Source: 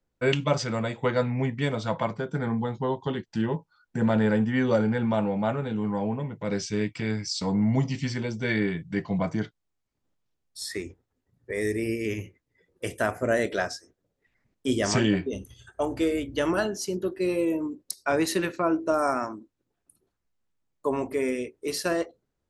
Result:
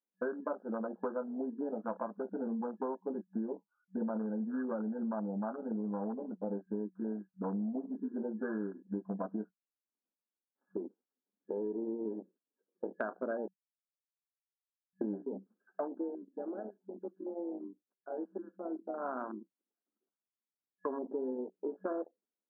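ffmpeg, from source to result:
-filter_complex "[0:a]asettb=1/sr,asplit=3[a][b][c];[a]atrim=end=4.224[d];[b]atrim=start=4.22:end=5.71,asetpts=PTS-STARTPTS,afade=t=in:d=0.004:c=qsin,afade=t=out:st=1.486:d=0.004:c=qsin,equalizer=f=480:w=1.6:g=-5.5[e];[c]atrim=start=5.706[f];[d][e]acrossfade=d=0.004:c1=hsin:c2=qsin[g];[g][f]acrossfade=d=0.004:c1=qsin:c2=hsin,asplit=5[h][i][j][k][l];[h]atrim=end=13.48,asetpts=PTS-STARTPTS,afade=t=out:st=13.476:d=0.004:c=hsin[m];[i]atrim=start=13.48:end=15.01,asetpts=PTS-STARTPTS,volume=0[n];[j]atrim=start=15.01:end=16.19,asetpts=PTS-STARTPTS,afade=t=in:d=0.004:c=hsin,afade=t=out:st=0.8:d=0.38:silence=0.237137[o];[k]atrim=start=16.19:end=18.99,asetpts=PTS-STARTPTS,volume=-12.5dB[p];[l]atrim=start=18.99,asetpts=PTS-STARTPTS,afade=t=in:d=0.38:silence=0.237137[q];[m][n][o][p][q]concat=n=5:v=0:a=1,afwtdn=0.0355,afftfilt=real='re*between(b*sr/4096,190,1700)':imag='im*between(b*sr/4096,190,1700)':win_size=4096:overlap=0.75,acompressor=threshold=-34dB:ratio=6"

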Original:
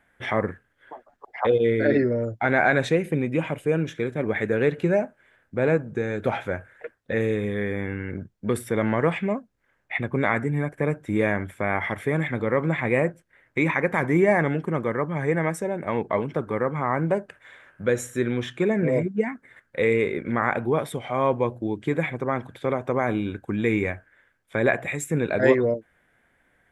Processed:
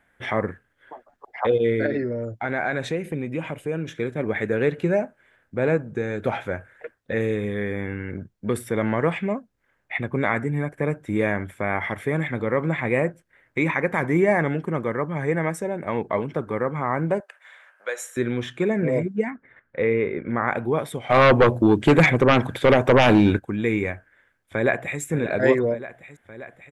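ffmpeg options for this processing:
-filter_complex "[0:a]asettb=1/sr,asplit=3[a][b][c];[a]atrim=end=1.864[d];[b]atrim=start=1.86:end=3.88,asetpts=PTS-STARTPTS,afade=t=in:d=0.004:c=qsin,afade=t=out:st=2.016:d=0.004:c=qsin,acompressor=threshold=-30dB:ratio=1.5:attack=3.2:release=140:knee=1:detection=peak[e];[c]atrim=start=3.876[f];[d][e]acrossfade=d=0.004:c1=hsin:c2=qsin[g];[g][f]acrossfade=d=0.004:c1=qsin:c2=hsin,asettb=1/sr,asplit=3[h][i][j];[h]atrim=end=17.204[k];[i]atrim=start=17.2:end=18.17,asetpts=PTS-STARTPTS,afade=t=in:d=0.004:c=qsin,afade=t=out:st=0.966:d=0.004:c=qsin,highpass=f=610:w=0.5412,highpass=f=610:w=1.3066[l];[j]atrim=start=18.166[m];[k][l]acrossfade=d=0.004:c1=hsin:c2=qsin[n];[n][m]acrossfade=d=0.004:c1=qsin:c2=hsin,asettb=1/sr,asplit=3[o][p][q];[o]atrim=end=19.304[r];[p]atrim=start=19.3:end=20.48,asetpts=PTS-STARTPTS,afade=t=in:d=0.004:c=qsin,afade=t=out:st=1.176:d=0.004:c=qsin,lowpass=2.2k[s];[q]atrim=start=20.476[t];[r][s]acrossfade=d=0.004:c1=hsin:c2=qsin[u];[u][t]acrossfade=d=0.004:c1=qsin:c2=hsin,asplit=3[v][w][x];[v]afade=t=out:st=21.09:d=0.02[y];[w]aeval=exprs='0.355*sin(PI/2*2.82*val(0)/0.355)':c=same,afade=t=in:st=21.09:d=0.02,afade=t=out:st=23.38:d=0.02[z];[x]afade=t=in:st=23.38:d=0.02[aa];[y][z][aa]amix=inputs=3:normalize=0,asplit=2[ab][ac];[ac]afade=t=in:st=23.93:d=0.01,afade=t=out:st=25:d=0.01,aecho=0:1:580|1160|1740|2320|2900|3480|4060|4640|5220|5800|6380:0.223872|0.167904|0.125928|0.094446|0.0708345|0.0531259|0.0398444|0.0298833|0.0224125|0.0168094|0.012607[ad];[ab][ad]amix=inputs=2:normalize=0"

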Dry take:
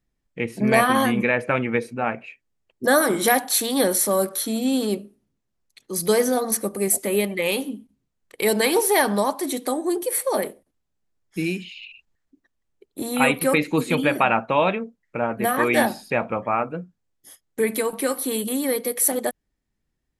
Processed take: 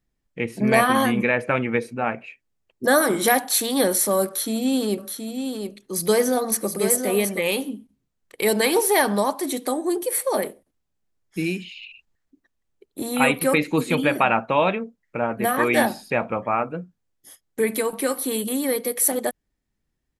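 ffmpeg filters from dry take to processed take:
-filter_complex "[0:a]asplit=3[a][b][c];[a]afade=t=out:st=4.97:d=0.02[d];[b]aecho=1:1:723:0.473,afade=t=in:st=4.97:d=0.02,afade=t=out:st=7.39:d=0.02[e];[c]afade=t=in:st=7.39:d=0.02[f];[d][e][f]amix=inputs=3:normalize=0"

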